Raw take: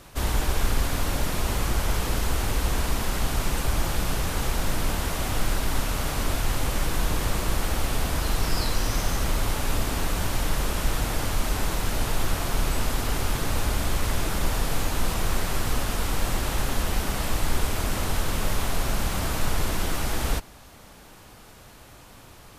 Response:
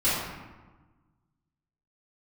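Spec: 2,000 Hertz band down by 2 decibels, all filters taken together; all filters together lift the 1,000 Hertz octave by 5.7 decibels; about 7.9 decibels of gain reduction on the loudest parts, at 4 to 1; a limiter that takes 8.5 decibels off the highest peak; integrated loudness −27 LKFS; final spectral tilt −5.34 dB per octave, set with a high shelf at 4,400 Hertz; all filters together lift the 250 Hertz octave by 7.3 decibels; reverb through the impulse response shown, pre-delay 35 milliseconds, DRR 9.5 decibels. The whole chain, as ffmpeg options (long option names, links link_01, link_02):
-filter_complex "[0:a]equalizer=frequency=250:width_type=o:gain=9,equalizer=frequency=1000:width_type=o:gain=8,equalizer=frequency=2000:width_type=o:gain=-5,highshelf=frequency=4400:gain=-4.5,acompressor=threshold=-26dB:ratio=4,alimiter=level_in=0.5dB:limit=-24dB:level=0:latency=1,volume=-0.5dB,asplit=2[link_01][link_02];[1:a]atrim=start_sample=2205,adelay=35[link_03];[link_02][link_03]afir=irnorm=-1:irlink=0,volume=-23dB[link_04];[link_01][link_04]amix=inputs=2:normalize=0,volume=8dB"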